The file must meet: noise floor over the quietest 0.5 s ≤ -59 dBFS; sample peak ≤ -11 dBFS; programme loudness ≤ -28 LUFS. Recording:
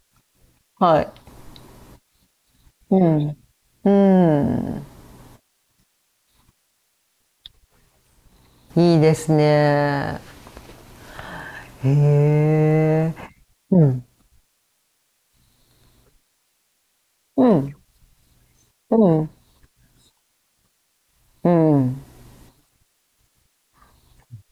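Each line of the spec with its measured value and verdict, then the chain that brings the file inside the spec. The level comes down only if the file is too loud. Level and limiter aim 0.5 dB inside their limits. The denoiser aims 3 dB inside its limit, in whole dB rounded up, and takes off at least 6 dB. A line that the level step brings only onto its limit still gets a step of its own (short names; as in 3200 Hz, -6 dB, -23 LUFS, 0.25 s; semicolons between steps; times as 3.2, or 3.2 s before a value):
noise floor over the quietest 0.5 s -68 dBFS: OK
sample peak -6.0 dBFS: fail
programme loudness -18.5 LUFS: fail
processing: gain -10 dB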